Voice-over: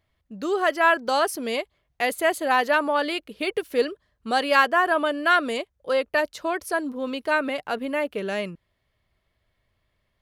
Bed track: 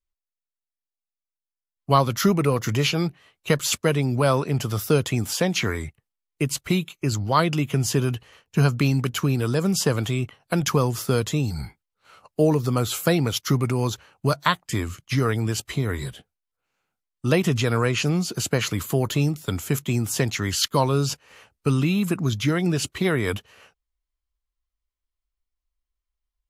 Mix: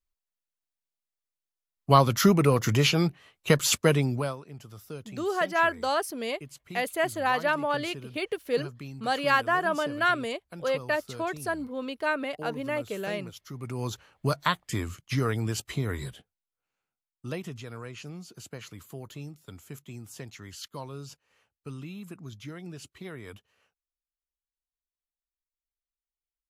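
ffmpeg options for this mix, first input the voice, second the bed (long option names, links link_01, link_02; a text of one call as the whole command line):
ffmpeg -i stem1.wav -i stem2.wav -filter_complex "[0:a]adelay=4750,volume=-5dB[link_01];[1:a]volume=15dB,afade=type=out:start_time=3.92:duration=0.44:silence=0.1,afade=type=in:start_time=13.53:duration=0.51:silence=0.16788,afade=type=out:start_time=15.92:duration=1.66:silence=0.199526[link_02];[link_01][link_02]amix=inputs=2:normalize=0" out.wav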